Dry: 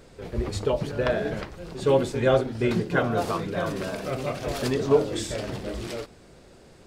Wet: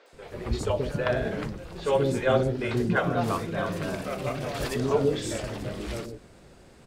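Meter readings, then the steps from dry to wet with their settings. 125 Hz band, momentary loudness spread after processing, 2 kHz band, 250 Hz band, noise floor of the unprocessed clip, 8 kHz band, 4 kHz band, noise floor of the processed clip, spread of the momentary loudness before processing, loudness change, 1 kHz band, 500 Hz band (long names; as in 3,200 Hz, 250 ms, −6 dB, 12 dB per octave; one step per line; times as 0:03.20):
0.0 dB, 11 LU, 0.0 dB, −1.0 dB, −52 dBFS, −1.5 dB, −2.0 dB, −53 dBFS, 12 LU, −1.5 dB, −0.5 dB, −2.5 dB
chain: three-band delay without the direct sound mids, highs, lows 60/130 ms, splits 420/4,900 Hz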